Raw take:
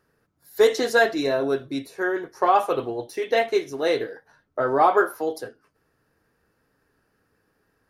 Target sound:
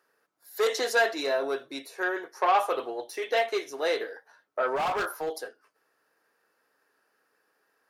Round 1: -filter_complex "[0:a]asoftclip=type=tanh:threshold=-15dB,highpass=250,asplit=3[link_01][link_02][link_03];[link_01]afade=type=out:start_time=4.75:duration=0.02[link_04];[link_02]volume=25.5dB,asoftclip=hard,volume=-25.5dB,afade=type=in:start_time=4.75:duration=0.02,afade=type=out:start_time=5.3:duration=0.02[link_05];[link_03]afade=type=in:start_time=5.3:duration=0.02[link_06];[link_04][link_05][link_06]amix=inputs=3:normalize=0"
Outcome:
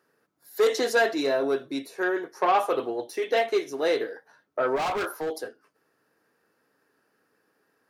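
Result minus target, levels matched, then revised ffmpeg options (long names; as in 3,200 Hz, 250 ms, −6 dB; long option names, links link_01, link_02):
250 Hz band +5.5 dB
-filter_complex "[0:a]asoftclip=type=tanh:threshold=-15dB,highpass=530,asplit=3[link_01][link_02][link_03];[link_01]afade=type=out:start_time=4.75:duration=0.02[link_04];[link_02]volume=25.5dB,asoftclip=hard,volume=-25.5dB,afade=type=in:start_time=4.75:duration=0.02,afade=type=out:start_time=5.3:duration=0.02[link_05];[link_03]afade=type=in:start_time=5.3:duration=0.02[link_06];[link_04][link_05][link_06]amix=inputs=3:normalize=0"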